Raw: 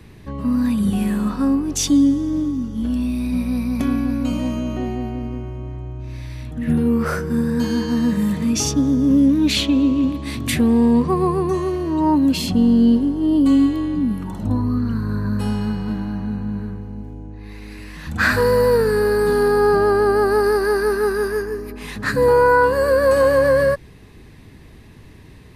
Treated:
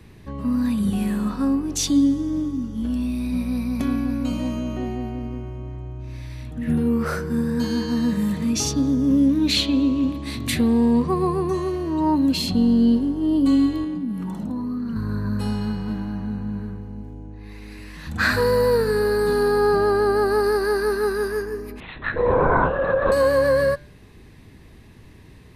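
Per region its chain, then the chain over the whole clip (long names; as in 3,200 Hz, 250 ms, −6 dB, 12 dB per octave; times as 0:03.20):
0:13.84–0:14.96: low shelf with overshoot 130 Hz −7.5 dB, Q 3 + downward compressor 5 to 1, threshold −21 dBFS
0:21.80–0:23.12: low-shelf EQ 220 Hz −11.5 dB + linear-prediction vocoder at 8 kHz whisper
whole clip: dynamic equaliser 4,100 Hz, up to +7 dB, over −53 dBFS, Q 6.9; hum removal 146.9 Hz, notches 33; level −3 dB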